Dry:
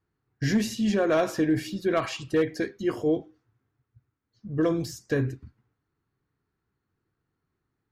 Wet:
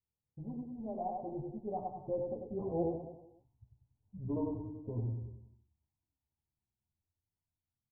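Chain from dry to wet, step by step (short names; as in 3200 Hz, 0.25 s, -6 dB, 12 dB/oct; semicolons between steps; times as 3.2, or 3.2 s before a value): Doppler pass-by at 3.31, 39 m/s, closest 25 m; steep low-pass 970 Hz 96 dB/oct; bell 380 Hz -11.5 dB 1.5 oct; feedback echo 95 ms, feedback 50%, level -4 dB; chorus voices 4, 0.39 Hz, delay 12 ms, depth 2.9 ms; gain +4.5 dB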